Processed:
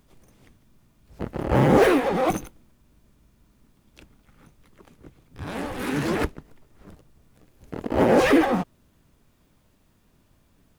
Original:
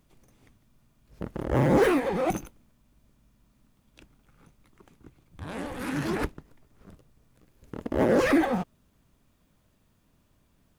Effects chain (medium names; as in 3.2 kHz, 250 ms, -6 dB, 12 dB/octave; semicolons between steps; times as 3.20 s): harmony voices +7 st -7 dB; trim +3.5 dB